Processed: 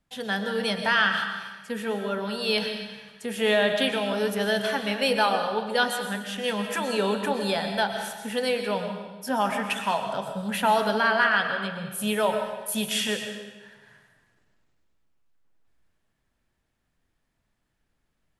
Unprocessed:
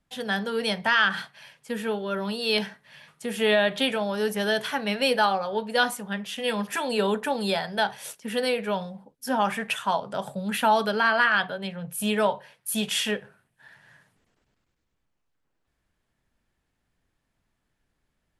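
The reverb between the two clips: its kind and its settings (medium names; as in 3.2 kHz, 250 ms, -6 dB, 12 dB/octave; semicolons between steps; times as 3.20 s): algorithmic reverb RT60 1.2 s, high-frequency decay 0.95×, pre-delay 80 ms, DRR 5.5 dB; trim -1 dB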